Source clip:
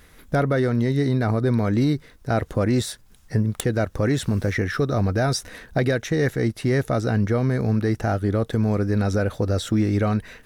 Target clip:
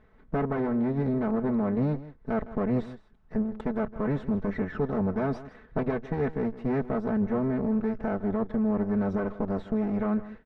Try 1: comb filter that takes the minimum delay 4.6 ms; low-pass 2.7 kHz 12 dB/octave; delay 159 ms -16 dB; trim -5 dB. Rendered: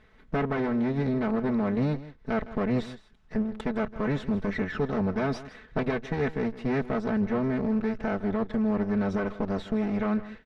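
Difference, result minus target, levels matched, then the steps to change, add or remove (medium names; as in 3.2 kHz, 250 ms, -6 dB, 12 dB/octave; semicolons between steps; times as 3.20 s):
2 kHz band +5.0 dB
change: low-pass 1.3 kHz 12 dB/octave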